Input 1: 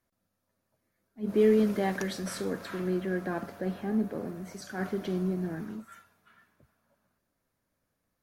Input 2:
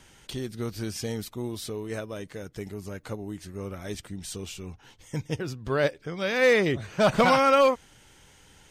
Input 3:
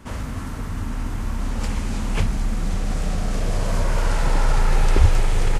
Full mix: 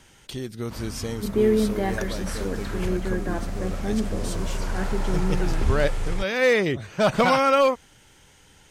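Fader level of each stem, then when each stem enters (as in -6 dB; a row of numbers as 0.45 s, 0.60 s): +2.5 dB, +1.0 dB, -8.0 dB; 0.00 s, 0.00 s, 0.65 s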